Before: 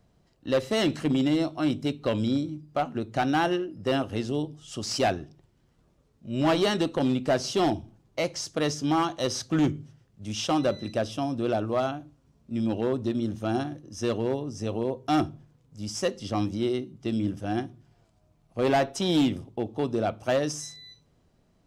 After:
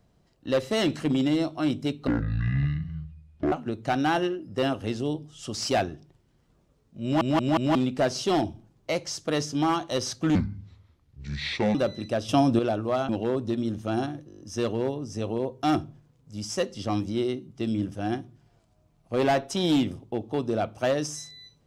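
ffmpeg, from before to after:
-filter_complex "[0:a]asplit=18[a][b][c][d][e][f][g][h][i][j][k][l][m][n][o][p][q][r];[a]atrim=end=2.074[s];[b]atrim=start=2.07:end=2.81,asetpts=PTS-STARTPTS,asetrate=22491,aresample=44100,atrim=end_sample=63988,asetpts=PTS-STARTPTS[t];[c]atrim=start=2.806:end=6.502[u];[d]atrim=start=6.318:end=6.502[v];[e]atrim=start=6.318:end=6.502[w];[f]atrim=start=6.318:end=6.502[x];[g]atrim=start=7.038:end=9.644[y];[h]atrim=start=9.64:end=10.59,asetpts=PTS-STARTPTS,asetrate=29988,aresample=44100,atrim=end_sample=61610,asetpts=PTS-STARTPTS[z];[i]atrim=start=10.586:end=11.132[aa];[j]atrim=start=11.128:end=11.432,asetpts=PTS-STARTPTS,volume=8.5dB[ab];[k]atrim=start=11.428:end=11.932[ac];[l]atrim=start=12.658:end=13.872[ad];[m]atrim=start=13.848:end=13.872[ae];[n]atrim=start=13.848:end=13.872[af];[o]atrim=start=13.848:end=13.872[ag];[p]atrim=start=13.848:end=13.872[ah];[q]atrim=start=13.848:end=13.872[ai];[r]atrim=start=13.848[aj];[s][t]acrossfade=d=0.004:c1=hsin:c2=hsin[ak];[ak][u]acrossfade=d=0.004:c1=hsin:c2=hsin[al];[al][v]acrossfade=d=0.004:c1=hsin:c2=hsin[am];[am][w]acrossfade=d=0.004:c1=hsin:c2=hsin[an];[an][x]acrossfade=d=0.004:c1=hsin:c2=hsin[ao];[ao][y]acrossfade=d=0.004:c1=hsin:c2=hsin[ap];[ap][z]acrossfade=d=0.004:c1=hsin:c2=hsin[aq];[aq][aa]acrossfade=d=0.004:c1=hsin:c2=hsin[ar];[ar][ab]acrossfade=d=0.004:c1=hsin:c2=hsin[as];[as][ac]acrossfade=d=0.004:c1=hsin:c2=hsin[at];[at][ad]acrossfade=d=0.004:c1=hsin:c2=hsin[au];[au][ae]acrossfade=d=0.004:c1=hsin:c2=hsin[av];[av][af]acrossfade=d=0.004:c1=hsin:c2=hsin[aw];[aw][ag]acrossfade=d=0.004:c1=hsin:c2=hsin[ax];[ax][ah]acrossfade=d=0.004:c1=hsin:c2=hsin[ay];[ay][ai]acrossfade=d=0.004:c1=hsin:c2=hsin[az];[az][aj]acrossfade=d=0.004:c1=hsin:c2=hsin"

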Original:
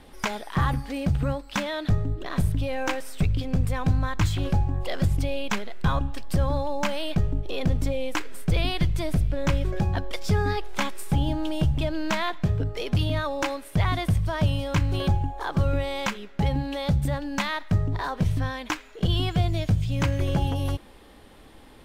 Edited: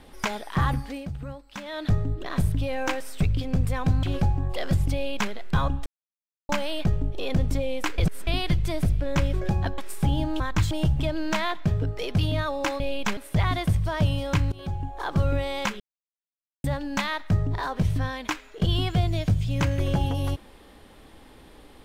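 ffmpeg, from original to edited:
-filter_complex "[0:a]asplit=16[a][b][c][d][e][f][g][h][i][j][k][l][m][n][o][p];[a]atrim=end=1.07,asetpts=PTS-STARTPTS,afade=t=out:st=0.83:d=0.24:silence=0.298538[q];[b]atrim=start=1.07:end=1.62,asetpts=PTS-STARTPTS,volume=-10.5dB[r];[c]atrim=start=1.62:end=4.032,asetpts=PTS-STARTPTS,afade=t=in:d=0.24:silence=0.298538[s];[d]atrim=start=4.338:end=6.17,asetpts=PTS-STARTPTS,afade=t=out:st=1.828:d=0.004:c=hsin[t];[e]atrim=start=6.17:end=6.8,asetpts=PTS-STARTPTS,volume=0[u];[f]atrim=start=6.8:end=8.292,asetpts=PTS-STARTPTS,afade=t=in:d=0.004:c=hsin[v];[g]atrim=start=8.288:end=8.582,asetpts=PTS-STARTPTS,areverse[w];[h]atrim=start=8.578:end=10.092[x];[i]atrim=start=10.868:end=11.492[y];[j]atrim=start=4.028:end=4.342[z];[k]atrim=start=11.488:end=13.582[aa];[l]atrim=start=5.248:end=5.622[ab];[m]atrim=start=13.578:end=14.93,asetpts=PTS-STARTPTS,afade=t=out:st=1.348:d=0.004:c=hsin:silence=0.0794328[ac];[n]atrim=start=14.93:end=16.21,asetpts=PTS-STARTPTS,afade=t=in:d=0.55:silence=0.0794328,afade=t=out:st=1.276:d=0.004:c=hsin[ad];[o]atrim=start=16.21:end=17.05,asetpts=PTS-STARTPTS,volume=0[ae];[p]atrim=start=17.05,asetpts=PTS-STARTPTS,afade=t=in:d=0.004:c=hsin[af];[q][r][s]concat=n=3:v=0:a=1[ag];[t][u][v]concat=n=3:v=0:a=1[ah];[ag][ah]acrossfade=d=0.004:c1=hsin:c2=hsin[ai];[ai][w]acrossfade=d=0.004:c1=hsin:c2=hsin[aj];[aj][x]acrossfade=d=0.004:c1=hsin:c2=hsin[ak];[ak][y]acrossfade=d=0.004:c1=hsin:c2=hsin[al];[al][z]acrossfade=d=0.004:c1=hsin:c2=hsin[am];[am][aa]acrossfade=d=0.004:c1=hsin:c2=hsin[an];[an][ab]acrossfade=d=0.004:c1=hsin:c2=hsin[ao];[ac][ad][ae][af]concat=n=4:v=0:a=1[ap];[ao][ap]acrossfade=d=0.004:c1=hsin:c2=hsin"

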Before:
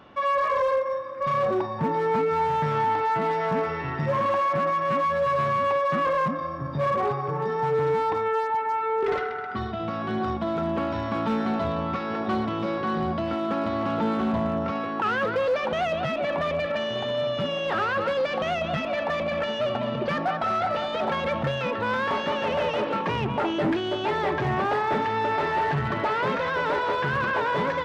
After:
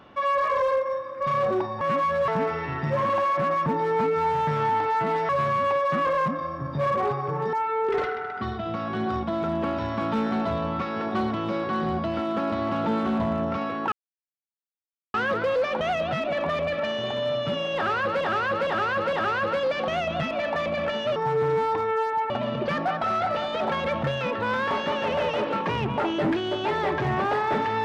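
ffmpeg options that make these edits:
-filter_complex "[0:a]asplit=12[a][b][c][d][e][f][g][h][i][j][k][l];[a]atrim=end=1.812[m];[b]atrim=start=4.818:end=5.292[n];[c]atrim=start=3.438:end=4.822[o];[d]atrim=start=1.808:end=3.442[p];[e]atrim=start=5.288:end=7.532[q];[f]atrim=start=8.668:end=15.06,asetpts=PTS-STARTPTS,afade=t=out:st=6.388:d=0.004:c=hsin,apad=pad_dur=1.22[r];[g]atrim=start=15.06:end=18.132,asetpts=PTS-STARTPTS,afade=t=in:d=0.004:c=hsin[s];[h]atrim=start=17.668:end=18.132[t];[i]atrim=start=17.668:end=18.132[u];[j]atrim=start=17.668:end=19.702[v];[k]atrim=start=7.528:end=8.672[w];[l]atrim=start=19.698[x];[m][n]acrossfade=d=0.004:c1=hsin:c2=hsin[y];[y][o]acrossfade=d=0.004:c1=hsin:c2=hsin[z];[z][p]acrossfade=d=0.004:c1=hsin:c2=hsin[aa];[aa][q]acrossfade=d=0.004:c1=hsin:c2=hsin[ab];[r][s]concat=n=2:v=0:a=1[ac];[ab][ac]acrossfade=d=0.004:c1=hsin:c2=hsin[ad];[ad][t]acrossfade=d=0.004:c1=hsin:c2=hsin[ae];[ae][u]acrossfade=d=0.004:c1=hsin:c2=hsin[af];[af][v]acrossfade=d=0.004:c1=hsin:c2=hsin[ag];[ag][w]acrossfade=d=0.004:c1=hsin:c2=hsin[ah];[ah][x]acrossfade=d=0.004:c1=hsin:c2=hsin"

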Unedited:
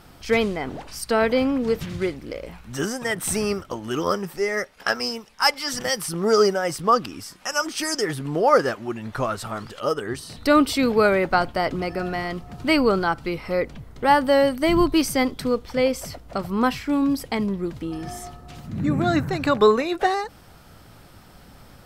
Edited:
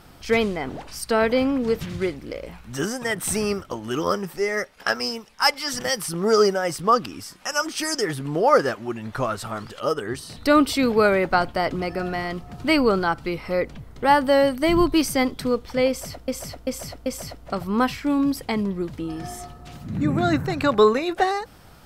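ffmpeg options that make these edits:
-filter_complex "[0:a]asplit=4[a][b][c][d];[a]atrim=end=16.282[e];[b]atrim=start=15.888:end=16.282[f];[c]atrim=start=15.888:end=16.282[g];[d]atrim=start=15.888[h];[e][f]acrossfade=d=0.004:c1=hsin:c2=hsin[i];[i][g]acrossfade=d=0.004:c1=hsin:c2=hsin[j];[j][h]acrossfade=d=0.004:c1=hsin:c2=hsin"

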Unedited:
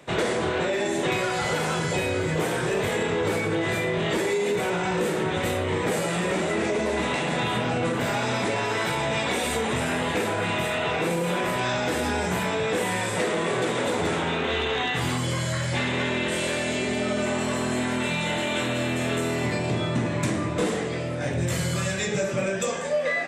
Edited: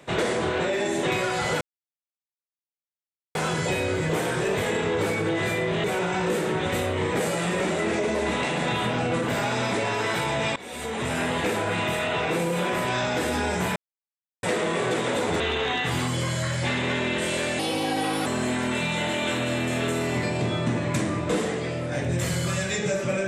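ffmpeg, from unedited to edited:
-filter_complex "[0:a]asplit=9[a][b][c][d][e][f][g][h][i];[a]atrim=end=1.61,asetpts=PTS-STARTPTS,afade=t=out:st=1.606:d=0.004:c=hsin,apad=pad_dur=1.74[j];[b]atrim=start=1.61:end=4.102,asetpts=PTS-STARTPTS,afade=t=in:d=0.004:c=hsin[k];[c]atrim=start=4.548:end=9.27,asetpts=PTS-STARTPTS,afade=t=out:st=4.718:d=0.004:c=hsin:silence=0.0891251[l];[d]atrim=start=9.27:end=12.47,asetpts=PTS-STARTPTS,afade=t=in:d=0.64:silence=0.0891251,afade=t=out:st=3.196:d=0.004:c=hsin[m];[e]atrim=start=12.47:end=13.14,asetpts=PTS-STARTPTS,volume=0[n];[f]atrim=start=13.14:end=14.112,asetpts=PTS-STARTPTS,afade=t=in:d=0.004:c=hsin[o];[g]atrim=start=14.498:end=16.694[p];[h]atrim=start=16.69:end=17.55,asetpts=PTS-STARTPTS,asetrate=56448,aresample=44100[q];[i]atrim=start=17.546[r];[j][k]concat=n=2:v=0:a=1[s];[l][m][n][o]concat=n=4:v=0:a=1[t];[s][t]acrossfade=d=0.004:c1=hsin:c2=hsin[u];[u][p]acrossfade=d=0.004:c1=hsin:c2=hsin[v];[v][q]acrossfade=d=0.004:c1=hsin:c2=hsin[w];[w][r]acrossfade=d=0.004:c1=hsin:c2=hsin"

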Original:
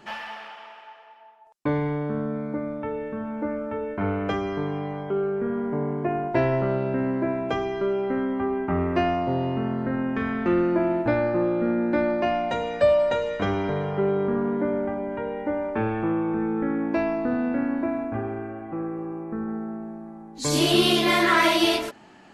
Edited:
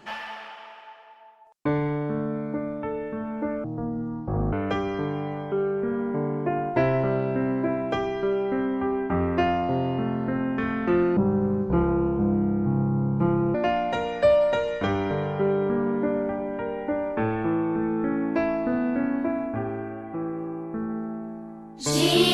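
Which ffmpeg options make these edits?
-filter_complex "[0:a]asplit=5[a][b][c][d][e];[a]atrim=end=3.644[f];[b]atrim=start=3.64:end=4.11,asetpts=PTS-STARTPTS,asetrate=23373,aresample=44100[g];[c]atrim=start=4.106:end=10.754[h];[d]atrim=start=10.75:end=12.13,asetpts=PTS-STARTPTS,asetrate=25578,aresample=44100[i];[e]atrim=start=12.126[j];[f][g]acrossfade=d=0.004:c1=hsin:c2=hsin[k];[k][h]acrossfade=d=0.004:c1=hsin:c2=hsin[l];[l][i]acrossfade=d=0.004:c1=hsin:c2=hsin[m];[m][j]acrossfade=d=0.004:c1=hsin:c2=hsin"

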